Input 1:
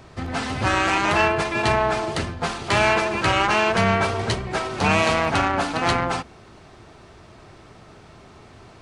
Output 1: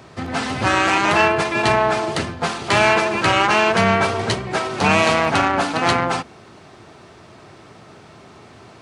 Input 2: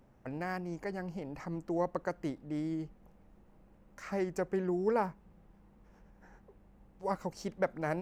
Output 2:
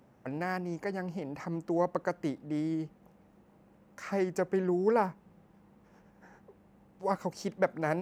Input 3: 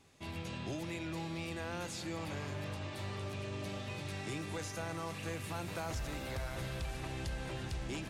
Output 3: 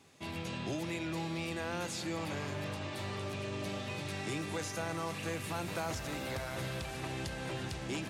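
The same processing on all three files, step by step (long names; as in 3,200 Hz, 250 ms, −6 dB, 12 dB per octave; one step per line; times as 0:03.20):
high-pass filter 110 Hz 12 dB per octave
level +3.5 dB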